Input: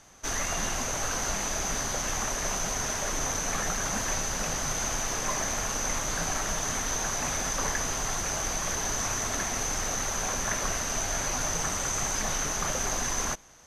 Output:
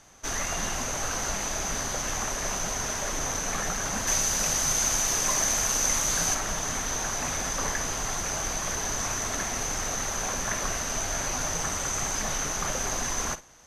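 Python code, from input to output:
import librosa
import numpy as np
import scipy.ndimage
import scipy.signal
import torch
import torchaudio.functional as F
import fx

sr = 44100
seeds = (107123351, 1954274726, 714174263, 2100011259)

y = fx.high_shelf(x, sr, hz=3700.0, db=9.0, at=(4.07, 6.35))
y = fx.room_flutter(y, sr, wall_m=9.0, rt60_s=0.21)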